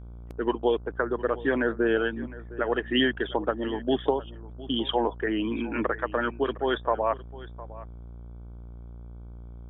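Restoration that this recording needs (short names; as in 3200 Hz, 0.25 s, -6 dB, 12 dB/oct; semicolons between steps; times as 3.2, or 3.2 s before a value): de-hum 58.7 Hz, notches 26; inverse comb 0.709 s -18 dB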